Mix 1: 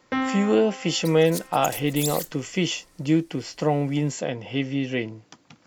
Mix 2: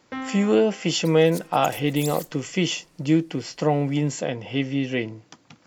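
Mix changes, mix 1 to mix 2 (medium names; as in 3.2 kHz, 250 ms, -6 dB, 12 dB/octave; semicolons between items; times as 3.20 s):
first sound -7.5 dB; second sound -5.5 dB; reverb: on, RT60 0.70 s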